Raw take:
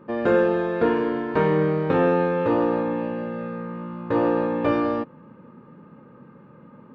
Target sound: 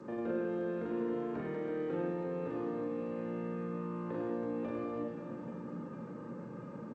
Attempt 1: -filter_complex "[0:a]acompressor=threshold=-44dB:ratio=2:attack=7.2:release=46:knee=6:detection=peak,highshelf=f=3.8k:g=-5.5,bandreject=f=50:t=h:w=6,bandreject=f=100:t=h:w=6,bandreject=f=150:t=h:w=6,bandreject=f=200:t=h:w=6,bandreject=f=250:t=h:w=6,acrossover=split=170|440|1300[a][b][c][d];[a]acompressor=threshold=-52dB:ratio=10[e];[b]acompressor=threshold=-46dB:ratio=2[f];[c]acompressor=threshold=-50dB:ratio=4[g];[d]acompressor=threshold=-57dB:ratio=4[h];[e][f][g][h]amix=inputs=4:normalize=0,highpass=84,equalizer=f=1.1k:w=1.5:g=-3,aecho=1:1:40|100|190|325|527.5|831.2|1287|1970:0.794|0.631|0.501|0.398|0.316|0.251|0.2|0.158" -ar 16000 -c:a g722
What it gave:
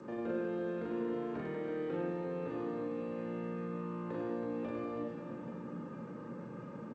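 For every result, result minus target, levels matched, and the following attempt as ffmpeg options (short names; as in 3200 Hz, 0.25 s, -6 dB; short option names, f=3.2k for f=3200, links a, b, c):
4000 Hz band +3.5 dB; compressor: peak gain reduction +3 dB
-filter_complex "[0:a]acompressor=threshold=-44dB:ratio=2:attack=7.2:release=46:knee=6:detection=peak,highshelf=f=3.8k:g=-16.5,bandreject=f=50:t=h:w=6,bandreject=f=100:t=h:w=6,bandreject=f=150:t=h:w=6,bandreject=f=200:t=h:w=6,bandreject=f=250:t=h:w=6,acrossover=split=170|440|1300[a][b][c][d];[a]acompressor=threshold=-52dB:ratio=10[e];[b]acompressor=threshold=-46dB:ratio=2[f];[c]acompressor=threshold=-50dB:ratio=4[g];[d]acompressor=threshold=-57dB:ratio=4[h];[e][f][g][h]amix=inputs=4:normalize=0,highpass=84,equalizer=f=1.1k:w=1.5:g=-3,aecho=1:1:40|100|190|325|527.5|831.2|1287|1970:0.794|0.631|0.501|0.398|0.316|0.251|0.2|0.158" -ar 16000 -c:a g722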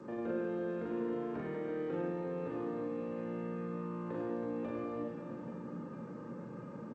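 compressor: peak gain reduction +3 dB
-filter_complex "[0:a]acompressor=threshold=-38dB:ratio=2:attack=7.2:release=46:knee=6:detection=peak,highshelf=f=3.8k:g=-16.5,bandreject=f=50:t=h:w=6,bandreject=f=100:t=h:w=6,bandreject=f=150:t=h:w=6,bandreject=f=200:t=h:w=6,bandreject=f=250:t=h:w=6,acrossover=split=170|440|1300[a][b][c][d];[a]acompressor=threshold=-52dB:ratio=10[e];[b]acompressor=threshold=-46dB:ratio=2[f];[c]acompressor=threshold=-50dB:ratio=4[g];[d]acompressor=threshold=-57dB:ratio=4[h];[e][f][g][h]amix=inputs=4:normalize=0,highpass=84,equalizer=f=1.1k:w=1.5:g=-3,aecho=1:1:40|100|190|325|527.5|831.2|1287|1970:0.794|0.631|0.501|0.398|0.316|0.251|0.2|0.158" -ar 16000 -c:a g722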